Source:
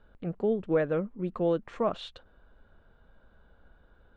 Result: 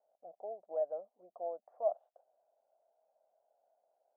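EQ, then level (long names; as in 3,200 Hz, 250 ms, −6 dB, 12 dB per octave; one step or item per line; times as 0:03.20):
flat-topped band-pass 680 Hz, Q 4
high-frequency loss of the air 440 metres
+1.0 dB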